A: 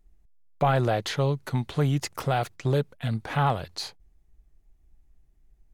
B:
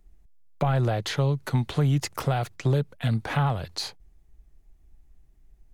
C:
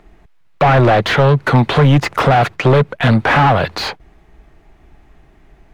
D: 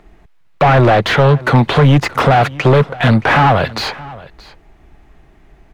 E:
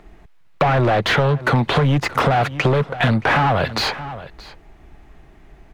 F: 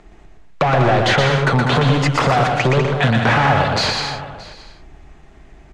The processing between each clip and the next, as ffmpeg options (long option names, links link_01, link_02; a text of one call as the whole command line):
ffmpeg -i in.wav -filter_complex "[0:a]acrossover=split=160[link_01][link_02];[link_02]acompressor=threshold=-31dB:ratio=3[link_03];[link_01][link_03]amix=inputs=2:normalize=0,volume=4dB" out.wav
ffmpeg -i in.wav -filter_complex "[0:a]asplit=2[link_01][link_02];[link_02]highpass=frequency=720:poles=1,volume=28dB,asoftclip=type=tanh:threshold=-10.5dB[link_03];[link_01][link_03]amix=inputs=2:normalize=0,lowpass=frequency=2200:poles=1,volume=-6dB,bass=frequency=250:gain=2,treble=frequency=4000:gain=-10,volume=7.5dB" out.wav
ffmpeg -i in.wav -af "aecho=1:1:623:0.0944,volume=1dB" out.wav
ffmpeg -i in.wav -af "acompressor=threshold=-14dB:ratio=6" out.wav
ffmpeg -i in.wav -filter_complex "[0:a]lowpass=frequency=7500:width_type=q:width=1.6,asplit=2[link_01][link_02];[link_02]aecho=0:1:120|198|248.7|281.7|303.1:0.631|0.398|0.251|0.158|0.1[link_03];[link_01][link_03]amix=inputs=2:normalize=0" out.wav